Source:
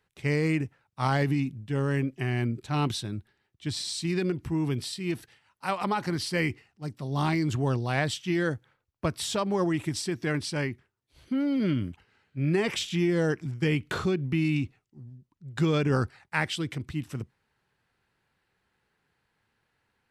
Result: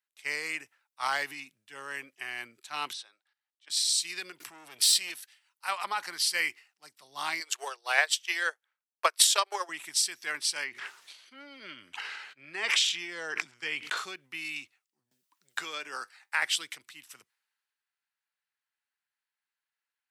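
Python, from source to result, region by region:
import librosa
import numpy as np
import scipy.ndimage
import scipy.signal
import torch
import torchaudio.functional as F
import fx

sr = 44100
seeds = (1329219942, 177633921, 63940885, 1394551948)

y = fx.chain(x, sr, fx.level_steps(step_db=14),
    fx.cabinet(low_hz=480.0, low_slope=12, high_hz=8400.0, hz=(530.0, 790.0, 1200.0, 7200.0), db=(7, 7, 5, -6)), at=(2.93, 3.7))
y = fx.chain(y, sr, fx.tube_stage(drive_db=27.0, bias=0.25),
    fx.env_flatten(amount_pct=100), at=(4.4, 5.1))
y = fx.chain(y, sr, fx.steep_highpass(hz=380.0, slope=48),
    fx.transient(attack_db=11, sustain_db=-12), at=(7.4, 9.69))
y = fx.chain(y, sr, fx.air_absorb(metres=65.0),
    fx.sustainer(db_per_s=33.0), at=(10.64, 13.97))
y = fx.chain(y, sr, fx.peak_eq(hz=90.0, db=-14.0, octaves=1.1),
    fx.comb_fb(f0_hz=100.0, decay_s=0.18, harmonics='all', damping=0.0, mix_pct=40),
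    fx.band_squash(depth_pct=70), at=(15.11, 16.42))
y = scipy.signal.sosfilt(scipy.signal.butter(2, 1200.0, 'highpass', fs=sr, output='sos'), y)
y = fx.high_shelf(y, sr, hz=6100.0, db=8.5)
y = fx.band_widen(y, sr, depth_pct=40)
y = F.gain(torch.from_numpy(y), 1.0).numpy()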